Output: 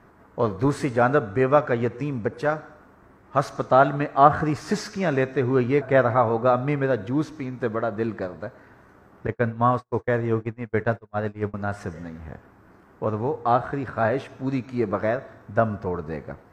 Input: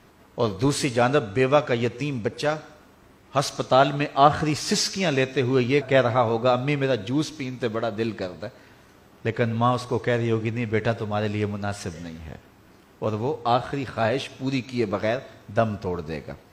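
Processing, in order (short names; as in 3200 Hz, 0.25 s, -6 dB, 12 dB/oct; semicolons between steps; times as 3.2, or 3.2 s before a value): 9.27–11.54 gate -24 dBFS, range -44 dB; resonant high shelf 2200 Hz -11 dB, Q 1.5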